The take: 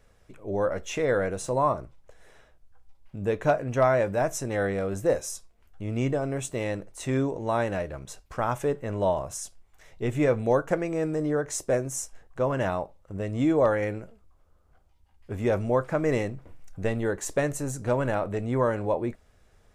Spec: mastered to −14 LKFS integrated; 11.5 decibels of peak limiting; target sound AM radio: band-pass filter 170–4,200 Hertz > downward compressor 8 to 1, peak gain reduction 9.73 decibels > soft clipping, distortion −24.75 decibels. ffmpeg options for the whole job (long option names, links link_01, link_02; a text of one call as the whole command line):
ffmpeg -i in.wav -af "alimiter=limit=-23dB:level=0:latency=1,highpass=170,lowpass=4200,acompressor=threshold=-36dB:ratio=8,asoftclip=threshold=-28dB,volume=28dB" out.wav